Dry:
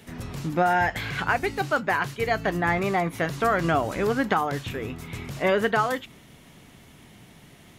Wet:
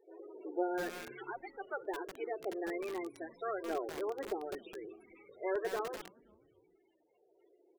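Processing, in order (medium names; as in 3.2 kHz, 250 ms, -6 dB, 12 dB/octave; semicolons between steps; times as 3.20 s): spectral contrast reduction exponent 0.25; high-pass 86 Hz 6 dB/octave; resonant low shelf 250 Hz -12 dB, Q 3; loudest bins only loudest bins 8; LFO notch saw down 0.54 Hz 240–2900 Hz; on a send: frequency-shifting echo 260 ms, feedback 39%, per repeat -110 Hz, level -23.5 dB; on the sum: bit-crushed delay 204 ms, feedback 55%, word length 5-bit, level -5.5 dB; trim -6.5 dB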